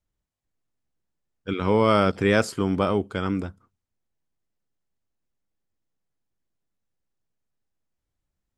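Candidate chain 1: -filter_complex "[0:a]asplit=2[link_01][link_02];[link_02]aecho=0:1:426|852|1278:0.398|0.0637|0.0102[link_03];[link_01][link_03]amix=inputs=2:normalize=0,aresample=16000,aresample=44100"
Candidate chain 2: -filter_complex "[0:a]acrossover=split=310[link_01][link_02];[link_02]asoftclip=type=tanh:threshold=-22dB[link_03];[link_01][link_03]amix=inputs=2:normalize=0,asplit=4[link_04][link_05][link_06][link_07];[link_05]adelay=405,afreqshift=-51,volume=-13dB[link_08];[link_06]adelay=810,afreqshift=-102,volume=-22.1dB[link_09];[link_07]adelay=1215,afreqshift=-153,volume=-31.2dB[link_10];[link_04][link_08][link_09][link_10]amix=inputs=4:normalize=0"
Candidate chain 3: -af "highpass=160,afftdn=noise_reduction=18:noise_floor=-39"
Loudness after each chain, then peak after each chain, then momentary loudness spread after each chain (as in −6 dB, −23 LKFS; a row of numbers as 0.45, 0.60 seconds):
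−22.5, −25.5, −23.5 LKFS; −5.5, −11.5, −5.0 dBFS; 16, 18, 13 LU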